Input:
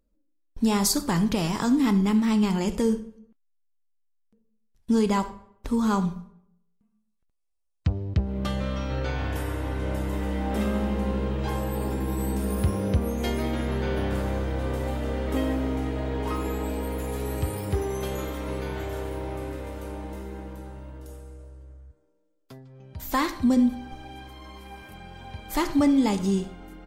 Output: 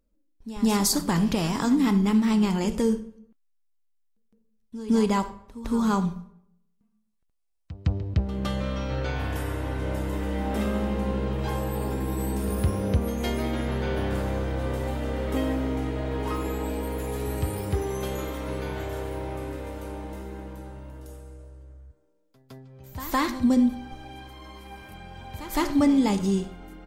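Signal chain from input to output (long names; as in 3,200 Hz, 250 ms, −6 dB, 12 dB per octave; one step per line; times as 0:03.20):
echo ahead of the sound 161 ms −15 dB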